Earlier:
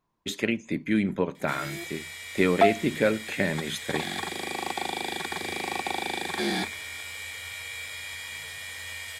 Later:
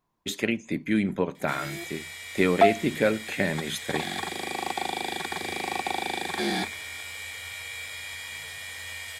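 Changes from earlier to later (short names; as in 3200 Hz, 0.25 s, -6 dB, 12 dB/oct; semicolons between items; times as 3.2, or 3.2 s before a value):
speech: add high shelf 8800 Hz +5.5 dB; master: add bell 740 Hz +3 dB 0.22 oct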